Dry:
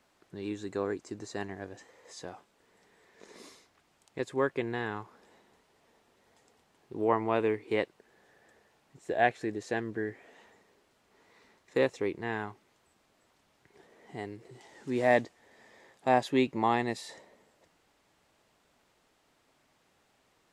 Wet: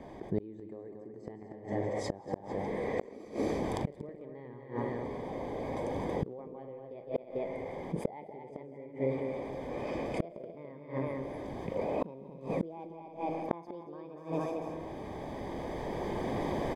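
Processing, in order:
gliding playback speed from 104% → 141%
camcorder AGC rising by 13 dB per second
moving average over 32 samples
on a send: multi-tap delay 41/158/172/233/293/443 ms −14/−12.5/−12.5/−7.5/−14/−17.5 dB
on the sum: comb and all-pass reverb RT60 1.9 s, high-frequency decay 0.9×, pre-delay 75 ms, DRR 17.5 dB
in parallel at −3 dB: gain into a clipping stage and back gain 18 dB
on the sum: gate with flip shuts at −22 dBFS, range −39 dB
envelope flattener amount 50%
level +2 dB

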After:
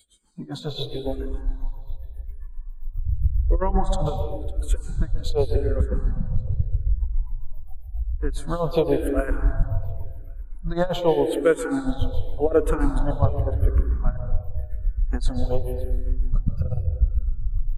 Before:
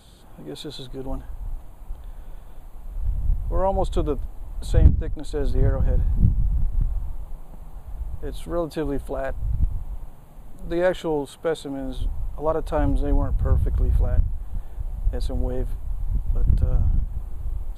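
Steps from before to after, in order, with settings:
compressor whose output falls as the input rises −21 dBFS, ratio −0.5
amplitude tremolo 7.4 Hz, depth 83%
noise reduction from a noise print of the clip's start 26 dB
on a send: repeating echo 555 ms, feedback 22%, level −21 dB
on the sum: dense smooth reverb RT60 1.4 s, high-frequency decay 0.5×, pre-delay 120 ms, DRR 6.5 dB
frequency shifter mixed with the dry sound −0.88 Hz
level +8.5 dB

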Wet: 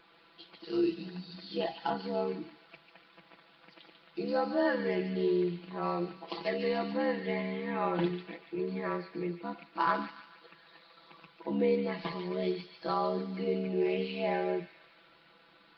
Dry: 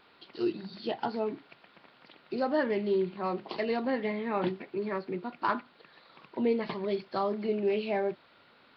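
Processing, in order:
time stretch by overlap-add 1.8×, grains 27 ms
delay with a high-pass on its return 144 ms, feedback 52%, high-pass 2,500 Hz, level −5 dB

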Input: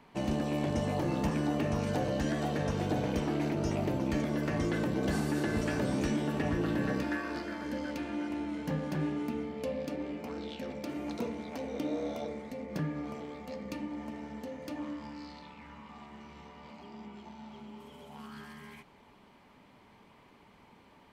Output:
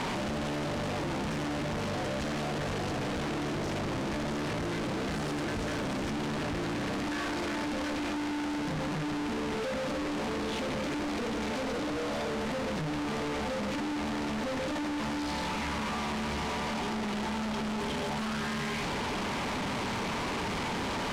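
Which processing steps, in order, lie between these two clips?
sign of each sample alone
high-frequency loss of the air 69 metres
level +2.5 dB

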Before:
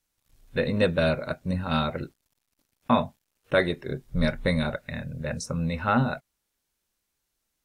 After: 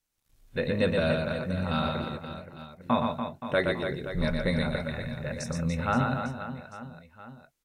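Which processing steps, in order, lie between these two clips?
reverse bouncing-ball delay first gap 120 ms, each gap 1.4×, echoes 5
level −4 dB

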